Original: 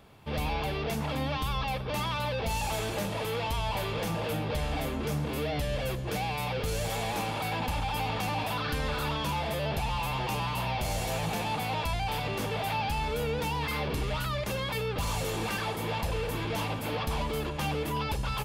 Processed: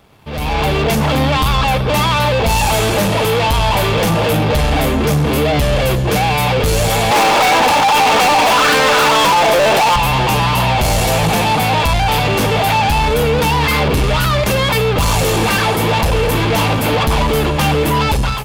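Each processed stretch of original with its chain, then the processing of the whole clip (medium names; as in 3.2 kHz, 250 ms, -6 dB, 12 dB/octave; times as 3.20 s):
7.11–9.96 s: high-pass 390 Hz + treble shelf 6.6 kHz -12 dB + waveshaping leveller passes 3
whole clip: waveshaping leveller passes 2; level rider gain up to 13 dB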